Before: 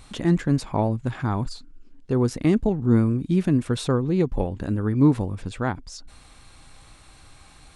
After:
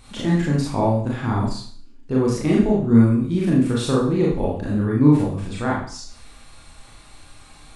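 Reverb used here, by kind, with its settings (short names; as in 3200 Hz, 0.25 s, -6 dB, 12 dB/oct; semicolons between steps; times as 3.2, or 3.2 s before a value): Schroeder reverb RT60 0.5 s, combs from 27 ms, DRR -4.5 dB; gain -2 dB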